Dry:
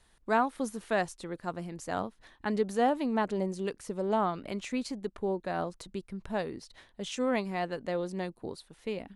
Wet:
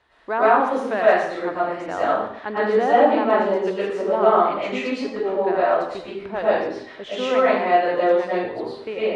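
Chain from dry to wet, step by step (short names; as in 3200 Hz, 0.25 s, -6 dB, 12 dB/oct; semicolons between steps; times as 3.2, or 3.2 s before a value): bell 180 Hz -14.5 dB 0.85 oct; in parallel at +2 dB: limiter -25.5 dBFS, peak gain reduction 11 dB; on the sum: BPF 120–2500 Hz; reverb RT60 0.70 s, pre-delay 75 ms, DRR -9 dB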